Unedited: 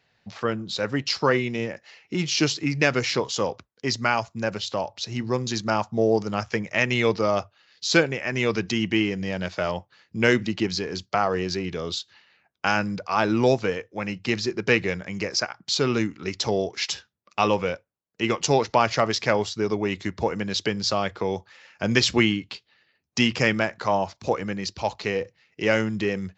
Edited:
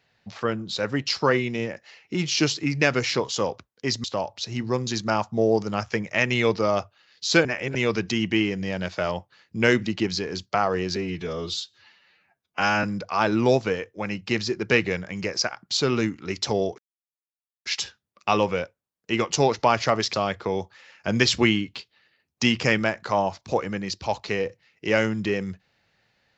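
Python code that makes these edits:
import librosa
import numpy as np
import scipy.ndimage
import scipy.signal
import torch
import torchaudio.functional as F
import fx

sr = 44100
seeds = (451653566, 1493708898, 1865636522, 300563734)

y = fx.edit(x, sr, fx.cut(start_s=4.04, length_s=0.6),
    fx.reverse_span(start_s=8.05, length_s=0.3),
    fx.stretch_span(start_s=11.56, length_s=1.25, factor=1.5),
    fx.insert_silence(at_s=16.76, length_s=0.87),
    fx.cut(start_s=19.24, length_s=1.65), tone=tone)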